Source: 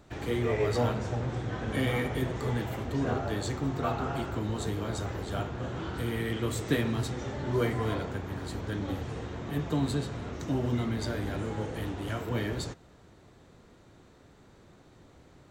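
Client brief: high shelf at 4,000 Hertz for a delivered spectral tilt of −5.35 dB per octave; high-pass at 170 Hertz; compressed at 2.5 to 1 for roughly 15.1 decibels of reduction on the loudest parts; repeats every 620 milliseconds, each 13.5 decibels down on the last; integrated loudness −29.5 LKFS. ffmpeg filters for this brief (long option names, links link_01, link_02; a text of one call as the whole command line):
ffmpeg -i in.wav -af "highpass=170,highshelf=frequency=4000:gain=-6.5,acompressor=threshold=-48dB:ratio=2.5,aecho=1:1:620|1240:0.211|0.0444,volume=16.5dB" out.wav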